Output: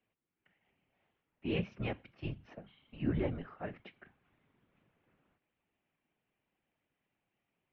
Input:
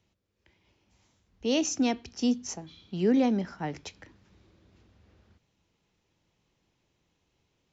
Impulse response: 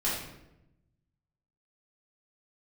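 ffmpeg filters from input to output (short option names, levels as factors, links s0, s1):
-af "afftfilt=real='hypot(re,im)*cos(2*PI*random(0))':imag='hypot(re,im)*sin(2*PI*random(1))':win_size=512:overlap=0.75,highpass=f=310:t=q:w=0.5412,highpass=f=310:t=q:w=1.307,lowpass=f=3100:t=q:w=0.5176,lowpass=f=3100:t=q:w=0.7071,lowpass=f=3100:t=q:w=1.932,afreqshift=-180"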